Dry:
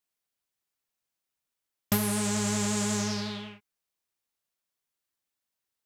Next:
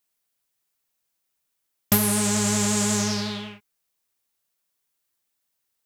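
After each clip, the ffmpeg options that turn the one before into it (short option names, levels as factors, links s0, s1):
-af "highshelf=f=7800:g=6,volume=1.78"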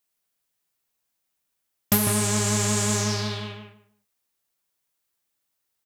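-filter_complex "[0:a]asplit=2[s0][s1];[s1]adelay=151,lowpass=f=2000:p=1,volume=0.708,asplit=2[s2][s3];[s3]adelay=151,lowpass=f=2000:p=1,volume=0.23,asplit=2[s4][s5];[s5]adelay=151,lowpass=f=2000:p=1,volume=0.23[s6];[s0][s2][s4][s6]amix=inputs=4:normalize=0,volume=0.891"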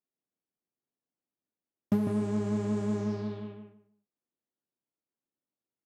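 -af "bandpass=f=270:t=q:w=1.3:csg=0"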